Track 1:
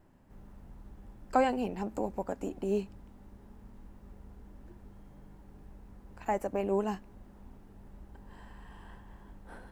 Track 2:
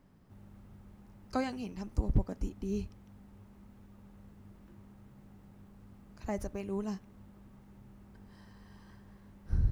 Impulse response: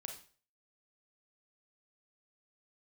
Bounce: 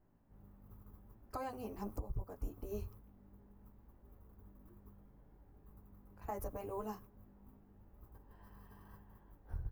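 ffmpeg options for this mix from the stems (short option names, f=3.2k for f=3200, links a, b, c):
-filter_complex "[0:a]lowpass=f=1.4k:p=1,flanger=delay=17.5:depth=2.4:speed=0.74,volume=-6dB,asplit=2[a][b];[1:a]firequalizer=gain_entry='entry(130,0);entry(220,-20);entry(420,1);entry(630,-16);entry(1100,6);entry(1800,-14);entry(8700,-2);entry(13000,15)':delay=0.05:min_phase=1,volume=-1,adelay=6.3,volume=-1dB,asplit=2[c][d];[d]volume=-18.5dB[e];[b]apad=whole_len=433338[f];[c][f]sidechaingate=range=-33dB:threshold=-56dB:ratio=16:detection=peak[g];[2:a]atrim=start_sample=2205[h];[e][h]afir=irnorm=-1:irlink=0[i];[a][g][i]amix=inputs=3:normalize=0,alimiter=level_in=7dB:limit=-24dB:level=0:latency=1:release=424,volume=-7dB"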